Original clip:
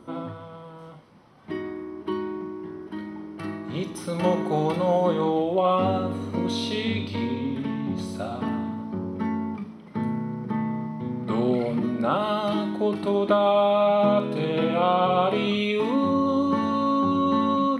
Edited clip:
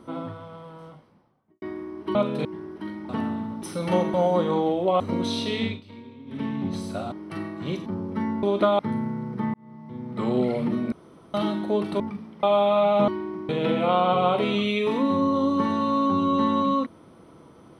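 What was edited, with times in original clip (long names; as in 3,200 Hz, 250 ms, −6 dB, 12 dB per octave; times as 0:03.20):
0:00.73–0:01.62: fade out and dull
0:02.15–0:02.56: swap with 0:14.12–0:14.42
0:03.20–0:03.94: swap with 0:08.37–0:08.90
0:04.46–0:04.84: remove
0:05.70–0:06.25: remove
0:06.89–0:07.68: duck −16 dB, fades 0.17 s
0:09.47–0:09.90: swap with 0:13.11–0:13.47
0:10.65–0:11.49: fade in
0:12.03–0:12.45: fill with room tone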